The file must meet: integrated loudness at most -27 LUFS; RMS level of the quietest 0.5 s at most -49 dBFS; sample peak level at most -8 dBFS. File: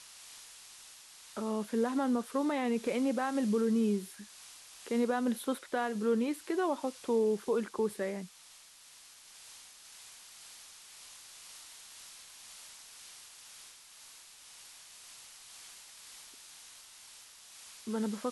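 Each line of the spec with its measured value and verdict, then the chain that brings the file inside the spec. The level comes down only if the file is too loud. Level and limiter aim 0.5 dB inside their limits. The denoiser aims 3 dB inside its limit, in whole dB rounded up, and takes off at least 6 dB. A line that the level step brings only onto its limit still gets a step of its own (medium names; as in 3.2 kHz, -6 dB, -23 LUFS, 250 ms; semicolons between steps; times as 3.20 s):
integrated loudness -32.5 LUFS: pass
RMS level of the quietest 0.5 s -57 dBFS: pass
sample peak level -20.0 dBFS: pass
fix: none needed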